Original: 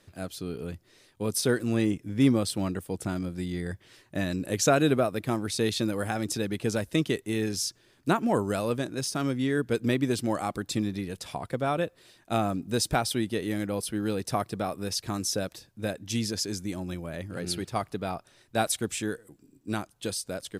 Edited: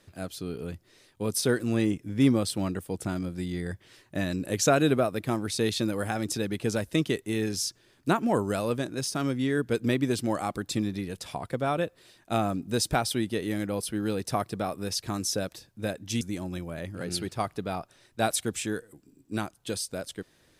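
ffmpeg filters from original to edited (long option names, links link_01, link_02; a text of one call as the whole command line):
ffmpeg -i in.wav -filter_complex "[0:a]asplit=2[link_01][link_02];[link_01]atrim=end=16.212[link_03];[link_02]atrim=start=16.568[link_04];[link_03][link_04]acrossfade=duration=0.004:curve1=hsin:curve2=hsin" out.wav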